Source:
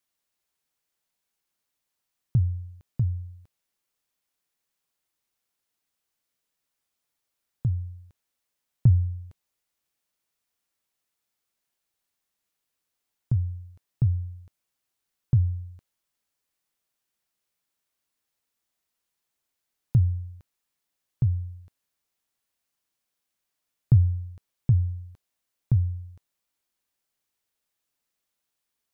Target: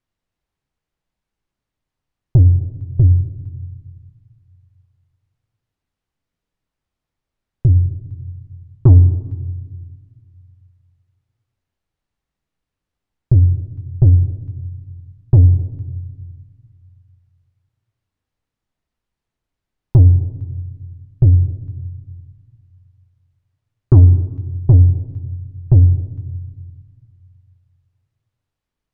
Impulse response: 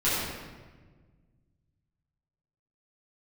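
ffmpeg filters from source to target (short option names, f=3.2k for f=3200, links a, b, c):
-filter_complex "[0:a]aemphasis=mode=reproduction:type=riaa,acontrast=61,asplit=2[a][b];[1:a]atrim=start_sample=2205[c];[b][c]afir=irnorm=-1:irlink=0,volume=-25dB[d];[a][d]amix=inputs=2:normalize=0,volume=-4dB"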